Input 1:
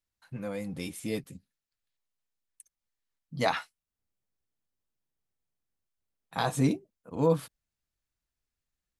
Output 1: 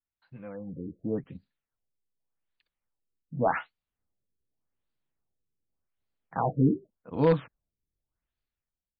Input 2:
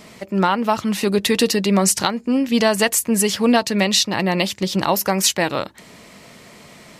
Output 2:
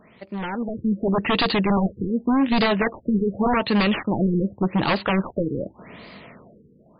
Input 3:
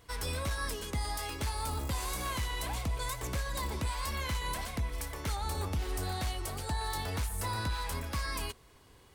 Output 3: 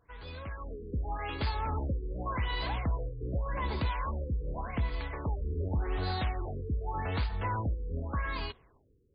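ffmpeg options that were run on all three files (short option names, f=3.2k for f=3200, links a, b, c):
-af "aeval=exprs='0.158*(abs(mod(val(0)/0.158+3,4)-2)-1)':c=same,dynaudnorm=f=120:g=13:m=11.5dB,afftfilt=real='re*lt(b*sr/1024,490*pow(5000/490,0.5+0.5*sin(2*PI*0.86*pts/sr)))':imag='im*lt(b*sr/1024,490*pow(5000/490,0.5+0.5*sin(2*PI*0.86*pts/sr)))':win_size=1024:overlap=0.75,volume=-8.5dB"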